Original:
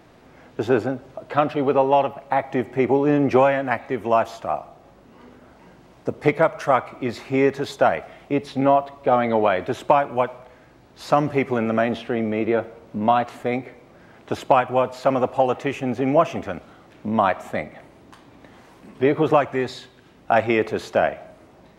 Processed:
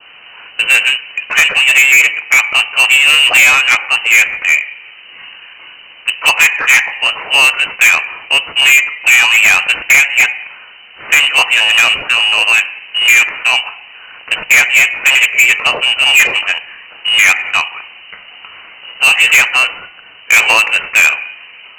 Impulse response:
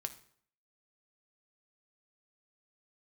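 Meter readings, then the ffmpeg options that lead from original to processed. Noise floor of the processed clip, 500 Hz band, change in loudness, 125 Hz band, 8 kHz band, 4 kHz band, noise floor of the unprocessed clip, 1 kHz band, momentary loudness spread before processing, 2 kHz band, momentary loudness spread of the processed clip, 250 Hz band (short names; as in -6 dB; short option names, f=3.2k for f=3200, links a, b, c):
-38 dBFS, -10.5 dB, +13.5 dB, under -10 dB, n/a, +28.5 dB, -51 dBFS, +0.5 dB, 12 LU, +24.0 dB, 9 LU, under -15 dB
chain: -filter_complex "[0:a]highshelf=f=2.1k:g=8.5,acrusher=bits=3:mode=log:mix=0:aa=0.000001,adynamicequalizer=threshold=0.0355:dfrequency=900:dqfactor=1.1:tfrequency=900:tqfactor=1.1:attack=5:release=100:ratio=0.375:range=3.5:mode=boostabove:tftype=bell,asplit=2[a][b];[1:a]atrim=start_sample=2205,atrim=end_sample=3087[c];[b][c]afir=irnorm=-1:irlink=0,volume=-4dB[d];[a][d]amix=inputs=2:normalize=0,lowpass=f=2.6k:t=q:w=0.5098,lowpass=f=2.6k:t=q:w=0.6013,lowpass=f=2.6k:t=q:w=0.9,lowpass=f=2.6k:t=q:w=2.563,afreqshift=-3100,asoftclip=type=tanh:threshold=-12.5dB,volume=8.5dB"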